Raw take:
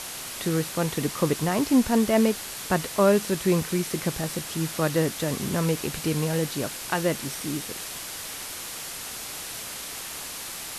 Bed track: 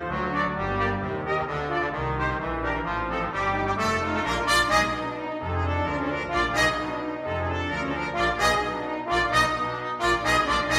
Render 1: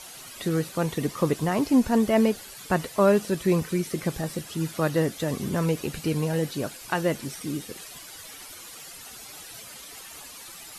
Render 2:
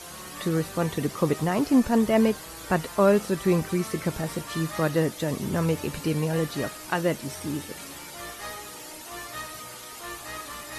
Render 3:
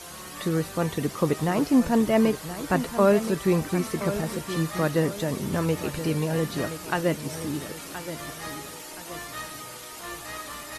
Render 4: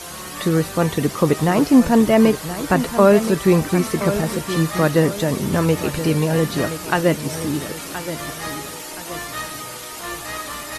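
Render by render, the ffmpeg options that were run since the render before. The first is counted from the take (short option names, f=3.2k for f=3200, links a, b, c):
-af "afftdn=nr=12:nf=-37"
-filter_complex "[1:a]volume=-16.5dB[a];[0:a][a]amix=inputs=2:normalize=0"
-af "aecho=1:1:1023|2046|3069|4092:0.266|0.104|0.0405|0.0158"
-af "volume=7.5dB,alimiter=limit=-3dB:level=0:latency=1"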